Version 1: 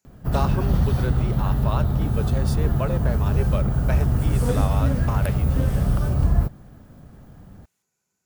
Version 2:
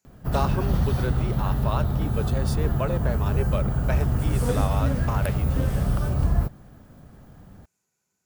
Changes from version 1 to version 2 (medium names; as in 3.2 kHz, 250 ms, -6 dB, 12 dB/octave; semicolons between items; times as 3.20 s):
first sound: add bass shelf 410 Hz -3 dB; second sound: add band-pass filter 7.5 kHz, Q 2.7